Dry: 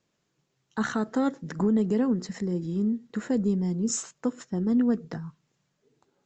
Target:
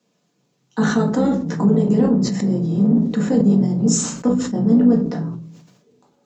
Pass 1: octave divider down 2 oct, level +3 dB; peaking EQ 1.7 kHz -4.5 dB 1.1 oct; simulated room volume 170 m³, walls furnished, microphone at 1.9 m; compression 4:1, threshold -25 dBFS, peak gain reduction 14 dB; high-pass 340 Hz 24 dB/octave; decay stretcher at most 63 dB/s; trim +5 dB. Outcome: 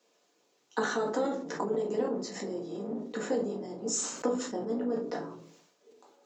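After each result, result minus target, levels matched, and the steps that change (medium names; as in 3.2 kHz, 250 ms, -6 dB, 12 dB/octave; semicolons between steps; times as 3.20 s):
125 Hz band -11.5 dB; compression: peak gain reduction +8.5 dB
change: high-pass 160 Hz 24 dB/octave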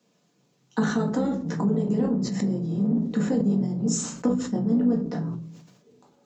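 compression: peak gain reduction +8.5 dB
change: compression 4:1, threshold -14 dBFS, peak gain reduction 6 dB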